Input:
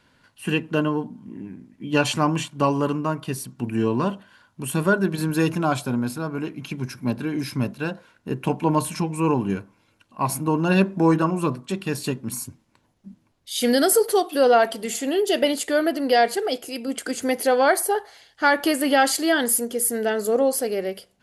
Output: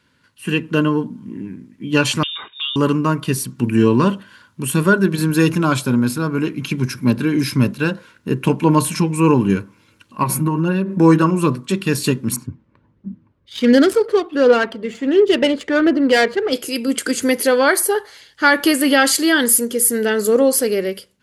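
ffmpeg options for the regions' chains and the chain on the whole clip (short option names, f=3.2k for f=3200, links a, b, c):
-filter_complex "[0:a]asettb=1/sr,asplit=3[a][b][c];[a]atrim=end=2.234[d];[b]atrim=start=2.23:end=2.76,asetpts=PTS-STARTPTS,afade=t=in:d=0.004:c=qsin,afade=t=out:st=0.526:d=0.004:c=qsin,highpass=270,lowpass=f=3.3k:t=q:w=0.5098,lowpass=f=3.3k:t=q:w=0.6013,lowpass=f=3.3k:t=q:w=0.9,lowpass=f=3.3k:t=q:w=2.563,afreqshift=-3900,acompressor=threshold=-35dB:ratio=2:attack=3.2:release=140:knee=1:detection=peak[e];[c]atrim=start=2.756[f];[d][e]acrossfade=d=0.004:c1=hsin:c2=qsin[g];[g][f]acrossfade=d=0.004:c1=qsin:c2=hsin,asettb=1/sr,asplit=3[h][i][j];[h]atrim=end=10.234[k];[i]atrim=start=10.23:end=11,asetpts=PTS-STARTPTS,afade=t=in:d=0.004:c=qsin,afade=t=out:st=0.766:d=0.004:c=qsin,equalizer=f=5.7k:w=0.58:g=-7.5,aecho=1:1:5.4:0.57,atrim=end_sample=33957,acompressor=threshold=-22dB:ratio=10:attack=3.2:release=140:knee=1:detection=peak[l];[j]atrim=start=10.996[m];[k][l]acrossfade=d=0.004:c1=hsin:c2=qsin[n];[n][m]acrossfade=d=0.004:c1=qsin:c2=hsin,asettb=1/sr,asplit=3[o][p][q];[o]atrim=end=12.364[r];[p]atrim=start=12.36:end=16.53,asetpts=PTS-STARTPTS,afade=t=in:d=0.004:c=qsin,afade=t=out:st=4.166:d=0.004:c=qsin,adynamicsmooth=sensitivity=1:basefreq=1.5k,aphaser=in_gain=1:out_gain=1:delay=1.9:decay=0.29:speed=1.4:type=triangular[s];[q]atrim=start=16.526[t];[r][s]acrossfade=d=0.004:c1=hsin:c2=qsin[u];[u][t]acrossfade=d=0.004:c1=qsin:c2=hsin,highpass=50,equalizer=f=720:w=3.5:g=-14.5,dynaudnorm=f=220:g=5:m=10.5dB"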